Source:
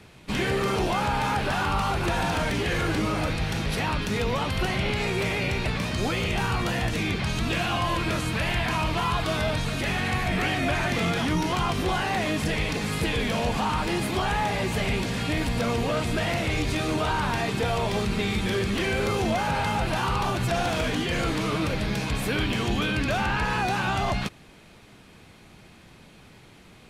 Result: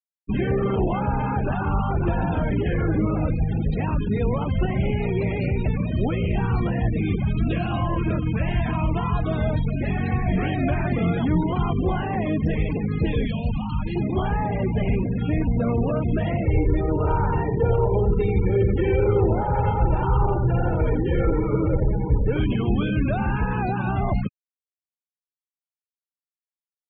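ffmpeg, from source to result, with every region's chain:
-filter_complex "[0:a]asettb=1/sr,asplit=3[s0][s1][s2];[s0]atrim=end=13.254[s3];[s1]atrim=start=13.25:end=13.96,asetpts=PTS-STARTPTS,afade=t=in:d=0.004:c=qsin,afade=t=out:st=0.706:d=0.004:c=qsin,acrossover=split=210|3000[s4][s5][s6];[s5]acompressor=threshold=0.00631:ratio=2:attack=3.2:release=140:knee=2.83:detection=peak[s7];[s4][s7][s6]amix=inputs=3:normalize=0,equalizer=f=2100:t=o:w=2.8:g=6.5[s8];[s2]atrim=start=13.956[s9];[s3][s8]acrossfade=d=0.004:c1=hsin:c2=qsin[s10];[s10][s9]acrossfade=d=0.004:c1=qsin:c2=hsin,asettb=1/sr,asplit=3[s11][s12][s13];[s11]atrim=end=16.454[s14];[s12]atrim=start=16.45:end=22.37,asetpts=PTS-STARTPTS,afade=t=in:d=0.004:c=qsin,afade=t=out:st=5.916:d=0.004:c=qsin,aecho=1:1:2.2:0.6,atrim=end_sample=261072,adynamicsmooth=sensitivity=1.5:basefreq=1600,aecho=1:1:88|176|264:0.562|0.101|0.0182,atrim=end_sample=261072[s15];[s13]atrim=start=22.366[s16];[s14][s15]acrossfade=d=0.004:c1=hsin:c2=qsin[s17];[s17][s16]acrossfade=d=0.004:c1=qsin:c2=hsin,afftfilt=real='re*gte(hypot(re,im),0.0631)':imag='im*gte(hypot(re,im),0.0631)':win_size=1024:overlap=0.75,tiltshelf=f=710:g=6.5"

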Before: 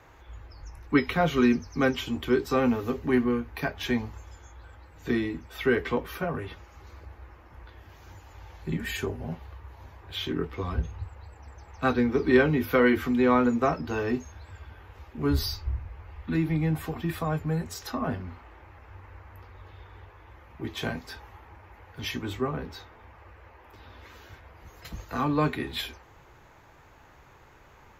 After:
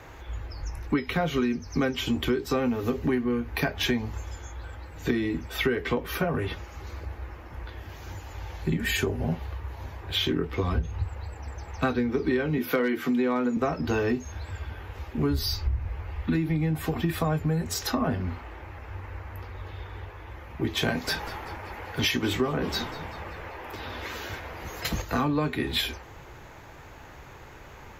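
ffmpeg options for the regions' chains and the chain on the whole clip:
-filter_complex "[0:a]asettb=1/sr,asplit=3[s0][s1][s2];[s0]atrim=end=12.584[s3];[s1]atrim=start=12.58:end=13.57,asetpts=PTS-STARTPTS,afade=t=in:d=0.004:c=qsin,afade=t=out:st=0.986:d=0.004:c=qsin,highpass=f=150:w=0.5412,highpass=f=150:w=1.3066,volume=4.22,asoftclip=hard,volume=0.237[s4];[s2]atrim=start=13.566[s5];[s3][s4]acrossfade=d=0.004:c1=hsin:c2=qsin[s6];[s6][s5]acrossfade=d=0.004:c1=qsin:c2=hsin,asettb=1/sr,asplit=3[s7][s8][s9];[s7]atrim=end=20.884[s10];[s8]atrim=start=20.88:end=25.02,asetpts=PTS-STARTPTS,afade=t=in:d=0.004:c=qsin,afade=t=out:st=4.136:d=0.004:c=qsin,lowshelf=f=130:g=-9.5,asplit=6[s11][s12][s13][s14][s15][s16];[s12]adelay=193,afreqshift=-78,volume=0.133[s17];[s13]adelay=386,afreqshift=-156,volume=0.0733[s18];[s14]adelay=579,afreqshift=-234,volume=0.0403[s19];[s15]adelay=772,afreqshift=-312,volume=0.0221[s20];[s16]adelay=965,afreqshift=-390,volume=0.0122[s21];[s11][s17][s18][s19][s20][s21]amix=inputs=6:normalize=0,atrim=end_sample=182574,acontrast=55[s22];[s9]atrim=start=25.016[s23];[s10][s22]acrossfade=d=0.004:c1=hsin:c2=qsin[s24];[s24][s23]acrossfade=d=0.004:c1=qsin:c2=hsin,equalizer=f=1100:w=1.5:g=-3,acompressor=threshold=0.0282:ratio=12,volume=2.82"

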